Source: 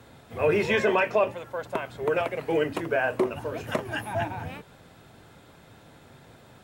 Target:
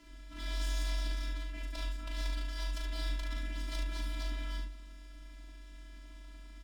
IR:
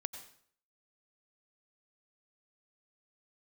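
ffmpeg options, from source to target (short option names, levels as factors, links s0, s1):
-filter_complex "[0:a]lowpass=6400,afftfilt=real='re*lt(hypot(re,im),0.0794)':imag='im*lt(hypot(re,im),0.0794)':win_size=1024:overlap=0.75,acrossover=split=420[s0][s1];[s1]aeval=exprs='abs(val(0))':c=same[s2];[s0][s2]amix=inputs=2:normalize=0,afftfilt=real='hypot(re,im)*cos(PI*b)':imag='0':win_size=512:overlap=0.75,asplit=2[s3][s4];[s4]aecho=0:1:27|39|72:0.141|0.531|0.531[s5];[s3][s5]amix=inputs=2:normalize=0,afreqshift=-47,volume=1.12"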